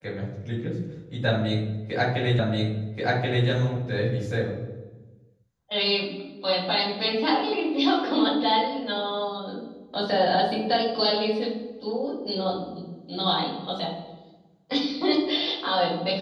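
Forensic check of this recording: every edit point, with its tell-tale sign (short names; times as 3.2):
2.39 repeat of the last 1.08 s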